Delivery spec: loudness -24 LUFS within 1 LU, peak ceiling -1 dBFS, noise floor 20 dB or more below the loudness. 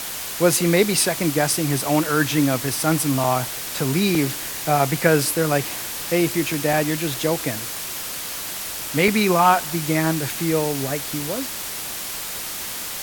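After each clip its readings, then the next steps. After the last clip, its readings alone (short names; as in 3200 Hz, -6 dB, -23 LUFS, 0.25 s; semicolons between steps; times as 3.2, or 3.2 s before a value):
dropouts 5; longest dropout 2.5 ms; noise floor -30 dBFS; noise floor target -41 dBFS; loudness -21.0 LUFS; peak -1.0 dBFS; loudness target -24.0 LUFS
-> interpolate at 2.04/3.24/4.15/6.73/9.08, 2.5 ms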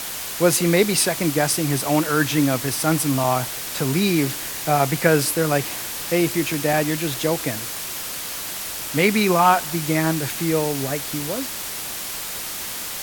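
dropouts 0; noise floor -30 dBFS; noise floor target -41 dBFS
-> denoiser 11 dB, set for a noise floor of -30 dBFS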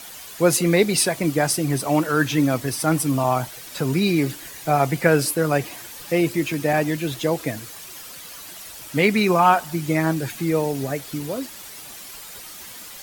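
noise floor -39 dBFS; noise floor target -42 dBFS
-> denoiser 6 dB, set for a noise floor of -39 dBFS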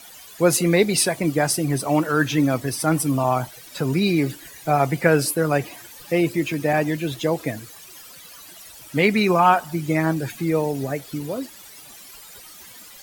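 noise floor -44 dBFS; loudness -21.5 LUFS; peak -1.5 dBFS; loudness target -24.0 LUFS
-> gain -2.5 dB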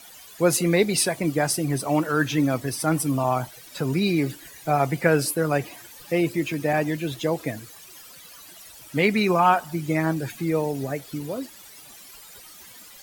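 loudness -24.0 LUFS; peak -4.0 dBFS; noise floor -46 dBFS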